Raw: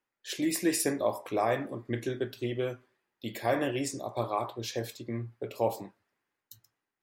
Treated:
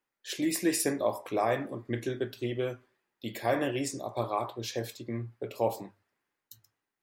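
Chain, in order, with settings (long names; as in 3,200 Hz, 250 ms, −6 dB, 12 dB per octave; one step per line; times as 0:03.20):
mains-hum notches 50/100 Hz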